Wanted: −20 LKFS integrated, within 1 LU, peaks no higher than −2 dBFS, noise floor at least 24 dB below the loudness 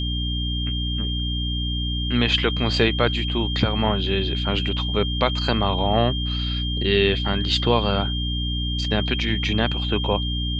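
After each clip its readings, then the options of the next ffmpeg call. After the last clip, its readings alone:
mains hum 60 Hz; hum harmonics up to 300 Hz; level of the hum −23 dBFS; interfering tone 3,200 Hz; level of the tone −28 dBFS; integrated loudness −22.0 LKFS; sample peak −3.0 dBFS; target loudness −20.0 LKFS
→ -af "bandreject=frequency=60:width_type=h:width=6,bandreject=frequency=120:width_type=h:width=6,bandreject=frequency=180:width_type=h:width=6,bandreject=frequency=240:width_type=h:width=6,bandreject=frequency=300:width_type=h:width=6"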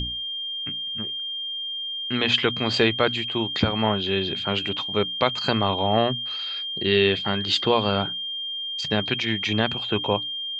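mains hum none found; interfering tone 3,200 Hz; level of the tone −28 dBFS
→ -af "bandreject=frequency=3200:width=30"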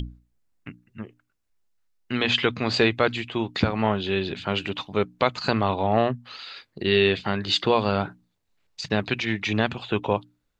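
interfering tone none found; integrated loudness −24.5 LKFS; sample peak −4.5 dBFS; target loudness −20.0 LKFS
→ -af "volume=4.5dB,alimiter=limit=-2dB:level=0:latency=1"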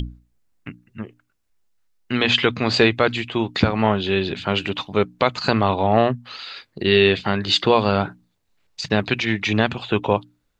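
integrated loudness −20.0 LKFS; sample peak −2.0 dBFS; background noise floor −70 dBFS

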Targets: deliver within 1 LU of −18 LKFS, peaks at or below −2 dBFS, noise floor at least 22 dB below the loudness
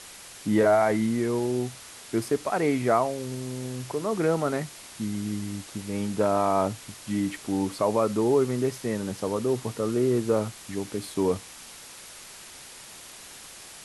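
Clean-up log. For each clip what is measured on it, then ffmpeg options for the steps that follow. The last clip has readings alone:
background noise floor −45 dBFS; target noise floor −49 dBFS; integrated loudness −27.0 LKFS; sample peak −9.0 dBFS; target loudness −18.0 LKFS
→ -af "afftdn=noise_reduction=6:noise_floor=-45"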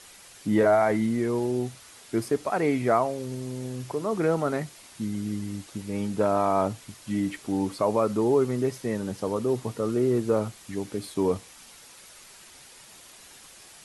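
background noise floor −50 dBFS; integrated loudness −27.0 LKFS; sample peak −9.5 dBFS; target loudness −18.0 LKFS
→ -af "volume=9dB,alimiter=limit=-2dB:level=0:latency=1"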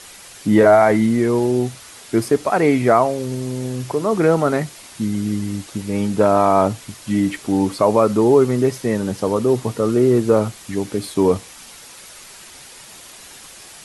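integrated loudness −18.0 LKFS; sample peak −2.0 dBFS; background noise floor −41 dBFS

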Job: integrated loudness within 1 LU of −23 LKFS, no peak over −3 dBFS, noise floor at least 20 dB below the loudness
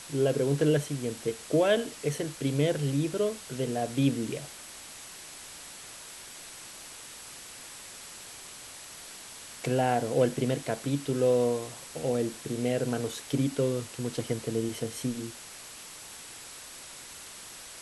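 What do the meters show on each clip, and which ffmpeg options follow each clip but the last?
interfering tone 7,800 Hz; level of the tone −54 dBFS; background noise floor −46 dBFS; target noise floor −50 dBFS; integrated loudness −29.5 LKFS; sample peak −12.5 dBFS; target loudness −23.0 LKFS
→ -af "bandreject=frequency=7800:width=30"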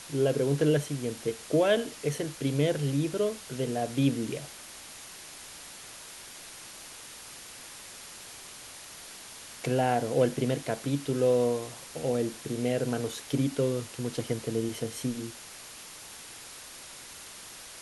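interfering tone none found; background noise floor −46 dBFS; target noise floor −50 dBFS
→ -af "afftdn=noise_reduction=6:noise_floor=-46"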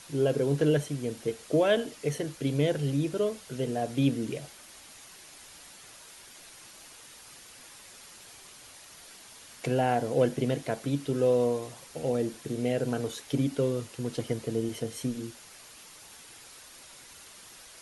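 background noise floor −51 dBFS; integrated loudness −29.5 LKFS; sample peak −13.0 dBFS; target loudness −23.0 LKFS
→ -af "volume=6.5dB"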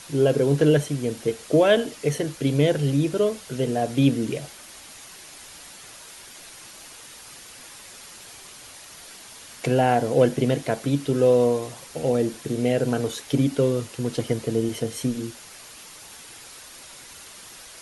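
integrated loudness −23.0 LKFS; sample peak −6.5 dBFS; background noise floor −44 dBFS

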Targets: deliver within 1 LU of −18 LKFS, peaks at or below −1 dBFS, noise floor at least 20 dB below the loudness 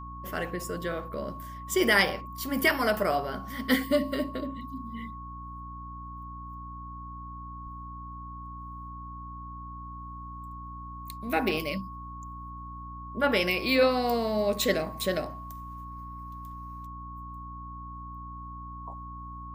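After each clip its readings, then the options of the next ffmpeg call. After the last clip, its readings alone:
mains hum 60 Hz; hum harmonics up to 300 Hz; level of the hum −41 dBFS; interfering tone 1,100 Hz; level of the tone −41 dBFS; integrated loudness −28.5 LKFS; sample peak −9.0 dBFS; target loudness −18.0 LKFS
→ -af "bandreject=frequency=60:width_type=h:width=6,bandreject=frequency=120:width_type=h:width=6,bandreject=frequency=180:width_type=h:width=6,bandreject=frequency=240:width_type=h:width=6,bandreject=frequency=300:width_type=h:width=6"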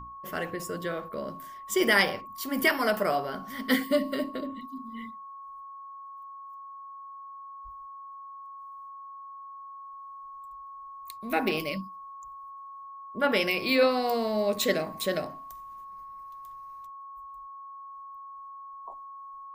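mains hum none found; interfering tone 1,100 Hz; level of the tone −41 dBFS
→ -af "bandreject=frequency=1100:width=30"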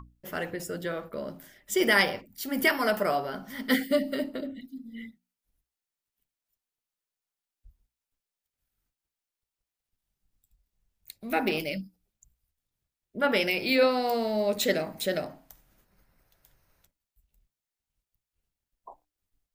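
interfering tone none found; integrated loudness −28.0 LKFS; sample peak −9.0 dBFS; target loudness −18.0 LKFS
→ -af "volume=10dB,alimiter=limit=-1dB:level=0:latency=1"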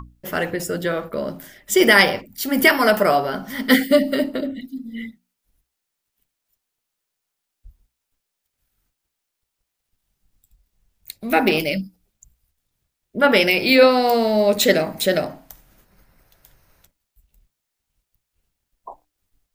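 integrated loudness −18.0 LKFS; sample peak −1.0 dBFS; background noise floor −80 dBFS

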